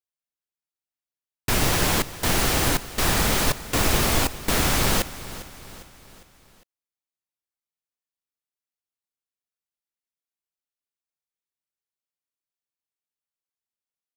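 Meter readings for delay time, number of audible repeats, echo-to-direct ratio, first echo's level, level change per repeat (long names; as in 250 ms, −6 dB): 403 ms, 4, −15.0 dB, −16.0 dB, −6.0 dB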